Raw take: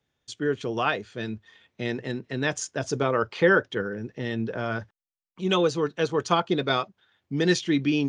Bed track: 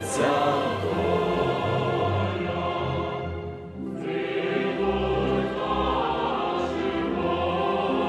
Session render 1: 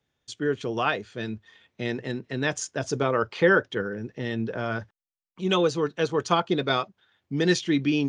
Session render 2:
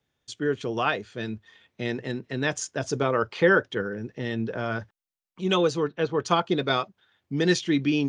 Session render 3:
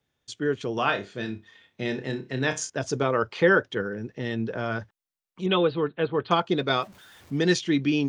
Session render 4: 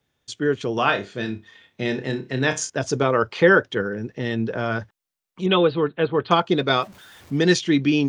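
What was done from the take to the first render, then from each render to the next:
no processing that can be heard
0:05.83–0:06.25: high-frequency loss of the air 200 metres
0:00.75–0:02.70: flutter between parallel walls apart 5.2 metres, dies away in 0.23 s; 0:05.46–0:06.31: Butterworth low-pass 4,100 Hz 72 dB per octave; 0:06.82–0:07.38: converter with a step at zero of −47 dBFS
level +4.5 dB

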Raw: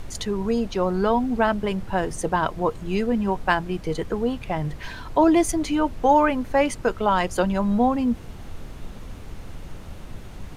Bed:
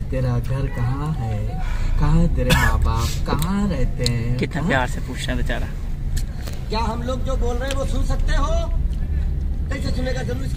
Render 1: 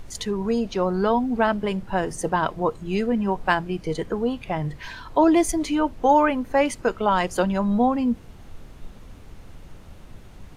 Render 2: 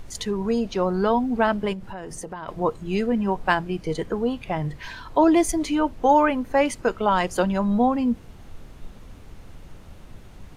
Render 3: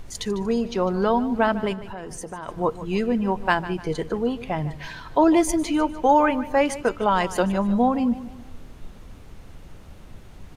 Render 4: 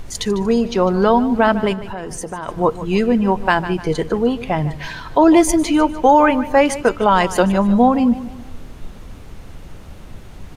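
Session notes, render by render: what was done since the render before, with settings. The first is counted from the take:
noise reduction from a noise print 6 dB
0:01.73–0:02.48: downward compressor, threshold −31 dBFS
repeating echo 150 ms, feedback 41%, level −15.5 dB
level +7 dB; brickwall limiter −2 dBFS, peak gain reduction 3 dB

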